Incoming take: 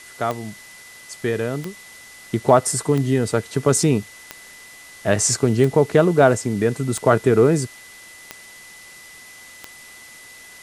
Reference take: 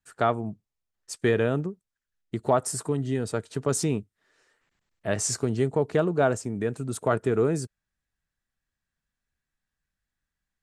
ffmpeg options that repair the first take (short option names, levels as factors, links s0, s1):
-af "adeclick=t=4,bandreject=f=2000:w=30,afwtdn=0.0071,asetnsamples=n=441:p=0,asendcmd='1.83 volume volume -8.5dB',volume=1"